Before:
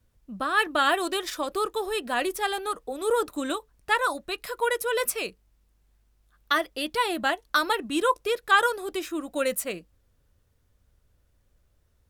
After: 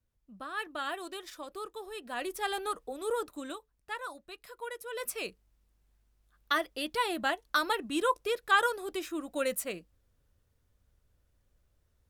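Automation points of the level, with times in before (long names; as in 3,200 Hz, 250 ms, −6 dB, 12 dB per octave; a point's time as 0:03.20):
0:01.94 −13.5 dB
0:02.61 −3.5 dB
0:03.90 −15 dB
0:04.85 −15 dB
0:05.26 −5 dB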